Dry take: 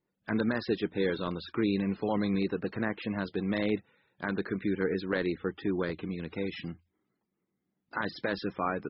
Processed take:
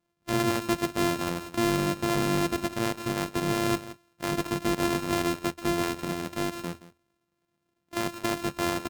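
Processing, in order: sorted samples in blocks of 128 samples; delay 172 ms -17 dB; Chebyshev shaper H 5 -24 dB, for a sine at -16 dBFS; trim +2 dB

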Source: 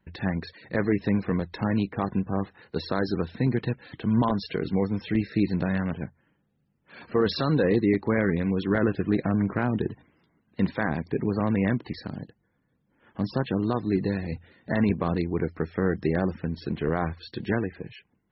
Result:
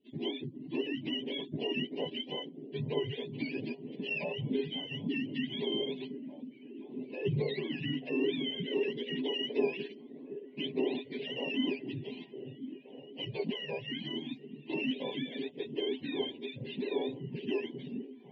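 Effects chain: spectrum inverted on a logarithmic axis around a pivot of 770 Hz; steep low-pass 3.3 kHz 36 dB/octave; peak limiter -21.5 dBFS, peak gain reduction 7.5 dB; Butterworth band-stop 1.3 kHz, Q 0.7; small resonant body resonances 260/410/1000 Hz, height 16 dB, ringing for 90 ms; on a send: repeats whose band climbs or falls 520 ms, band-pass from 160 Hz, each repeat 0.7 oct, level -7 dB; on the sum: trim -4.5 dB

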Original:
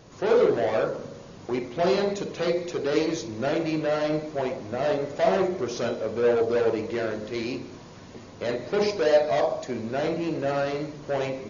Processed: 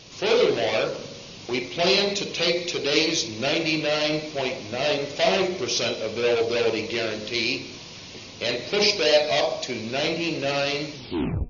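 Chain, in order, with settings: tape stop on the ending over 0.56 s; high-order bell 3.7 kHz +14.5 dB; de-hum 238.1 Hz, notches 11

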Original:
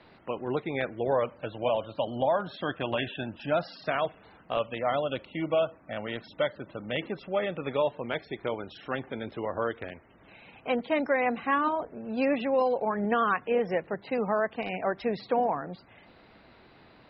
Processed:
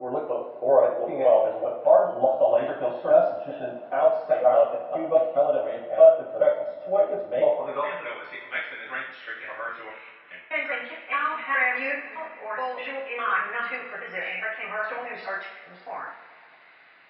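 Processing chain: slices played last to first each 206 ms, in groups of 3; band-pass sweep 640 Hz -> 2 kHz, 7.48–8.03 s; two-slope reverb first 0.55 s, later 2.8 s, from -18 dB, DRR -10 dB

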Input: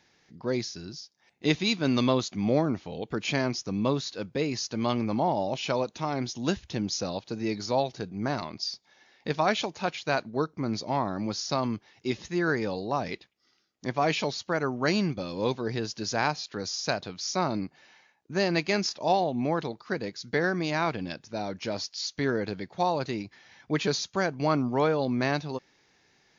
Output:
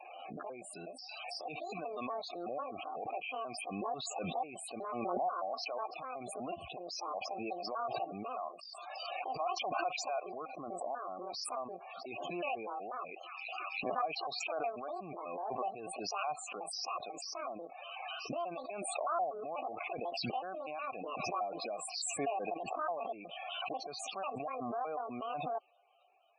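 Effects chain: pitch shift switched off and on +9.5 st, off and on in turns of 123 ms; gate with hold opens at -59 dBFS; reverse; compression 6:1, threshold -36 dBFS, peak gain reduction 16 dB; reverse; vowel filter a; on a send: feedback echo behind a high-pass 327 ms, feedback 59%, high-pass 3.8 kHz, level -16 dB; on the sum: loudest bins only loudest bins 32; swell ahead of each attack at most 22 dB/s; trim +8 dB

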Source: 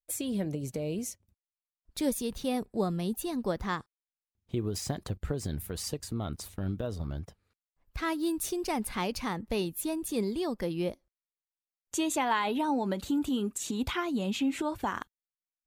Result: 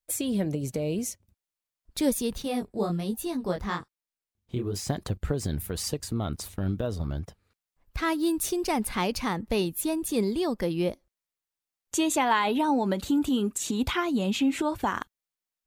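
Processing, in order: 2.42–4.88 s: chorus 1.2 Hz, delay 17.5 ms, depth 6.7 ms; trim +4.5 dB

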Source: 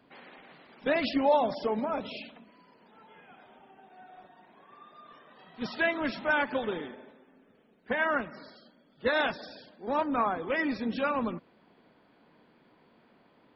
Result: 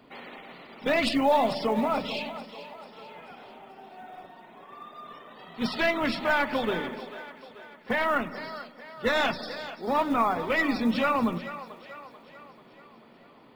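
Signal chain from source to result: tracing distortion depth 0.032 ms; hum notches 50/100/150/200/250/300 Hz; dynamic bell 420 Hz, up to -5 dB, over -42 dBFS, Q 1; band-stop 1.6 kHz, Q 9.4; in parallel at +3 dB: peak limiter -26 dBFS, peak gain reduction 9 dB; on the sum: short-mantissa float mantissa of 4-bit; two-band feedback delay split 420 Hz, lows 102 ms, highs 439 ms, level -13.5 dB; on a send at -16 dB: reverberation RT60 0.20 s, pre-delay 4 ms

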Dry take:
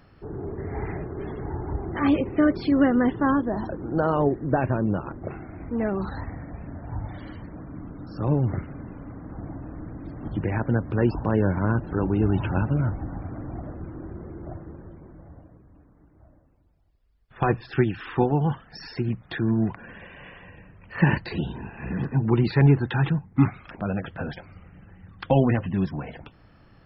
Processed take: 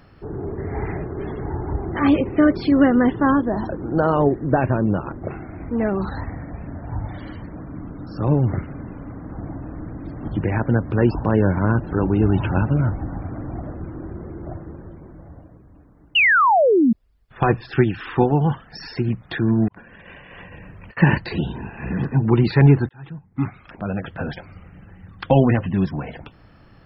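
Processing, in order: 16.15–16.93 s: painted sound fall 210–3000 Hz -19 dBFS; 19.68–20.97 s: compressor with a negative ratio -47 dBFS, ratio -0.5; 22.89–24.29 s: fade in; trim +4.5 dB

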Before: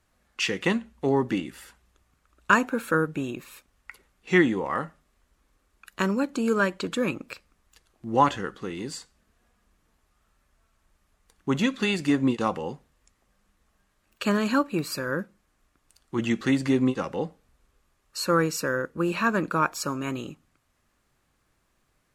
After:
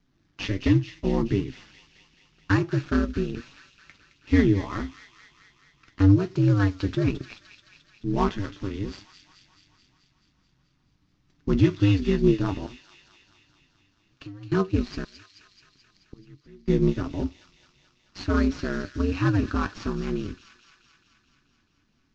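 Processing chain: CVSD coder 32 kbps; high-pass 87 Hz 6 dB/octave; resonant low shelf 290 Hz +12.5 dB, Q 1.5; 12.66–14.52 s: compression 4:1, threshold -40 dBFS, peak gain reduction 24.5 dB; ring modulator 98 Hz; flange 1.4 Hz, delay 6.6 ms, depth 4.2 ms, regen +59%; 15.04–16.68 s: inverted gate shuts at -30 dBFS, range -29 dB; feedback echo behind a high-pass 216 ms, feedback 68%, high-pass 2.5 kHz, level -7 dB; trim +2 dB

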